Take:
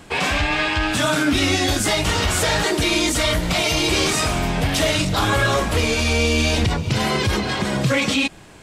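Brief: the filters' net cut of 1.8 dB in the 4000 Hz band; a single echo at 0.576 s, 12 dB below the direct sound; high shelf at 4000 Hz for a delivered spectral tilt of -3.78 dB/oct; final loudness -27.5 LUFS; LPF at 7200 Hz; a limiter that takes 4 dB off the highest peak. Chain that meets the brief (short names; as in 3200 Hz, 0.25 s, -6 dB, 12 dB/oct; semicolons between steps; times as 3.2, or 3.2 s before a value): LPF 7200 Hz; high shelf 4000 Hz +6 dB; bell 4000 Hz -5.5 dB; limiter -12 dBFS; echo 0.576 s -12 dB; gain -7 dB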